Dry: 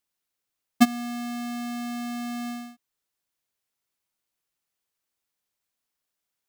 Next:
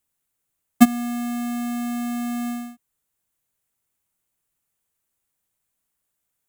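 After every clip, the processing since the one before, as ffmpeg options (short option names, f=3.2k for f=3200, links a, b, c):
-filter_complex "[0:a]aemphasis=mode=reproduction:type=50kf,acrossover=split=190|3400[a][b][c];[a]acontrast=75[d];[d][b][c]amix=inputs=3:normalize=0,aexciter=amount=6.1:drive=3.4:freq=7k,volume=3.5dB"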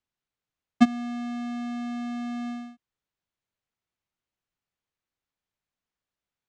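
-af "lowpass=f=5.4k:w=0.5412,lowpass=f=5.4k:w=1.3066,volume=-5.5dB"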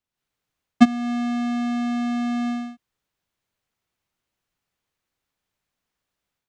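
-af "dynaudnorm=f=110:g=3:m=8dB"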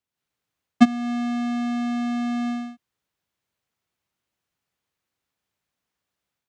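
-af "highpass=59,volume=-1dB"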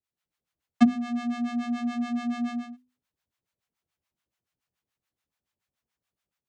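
-filter_complex "[0:a]acrossover=split=650[a][b];[a]aeval=exprs='val(0)*(1-1/2+1/2*cos(2*PI*7*n/s))':c=same[c];[b]aeval=exprs='val(0)*(1-1/2-1/2*cos(2*PI*7*n/s))':c=same[d];[c][d]amix=inputs=2:normalize=0,lowshelf=f=150:g=4,bandreject=f=50:t=h:w=6,bandreject=f=100:t=h:w=6,bandreject=f=150:t=h:w=6,bandreject=f=200:t=h:w=6,bandreject=f=250:t=h:w=6"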